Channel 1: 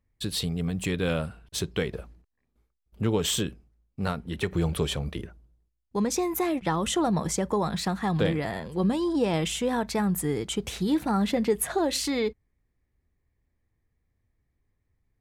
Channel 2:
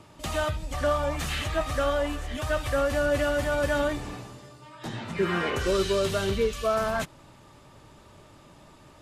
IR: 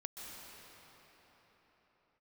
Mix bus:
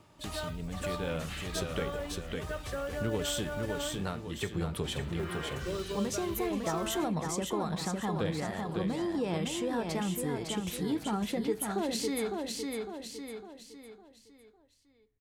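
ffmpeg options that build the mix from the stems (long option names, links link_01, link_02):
-filter_complex "[0:a]dynaudnorm=framelen=110:gausssize=17:maxgain=8.5dB,flanger=delay=6.3:depth=5.8:regen=84:speed=0.28:shape=triangular,volume=-6dB,asplit=2[link_01][link_02];[link_02]volume=-5dB[link_03];[1:a]acrusher=bits=6:mode=log:mix=0:aa=0.000001,volume=-8dB[link_04];[link_03]aecho=0:1:555|1110|1665|2220|2775:1|0.38|0.144|0.0549|0.0209[link_05];[link_01][link_04][link_05]amix=inputs=3:normalize=0,acompressor=threshold=-38dB:ratio=1.5"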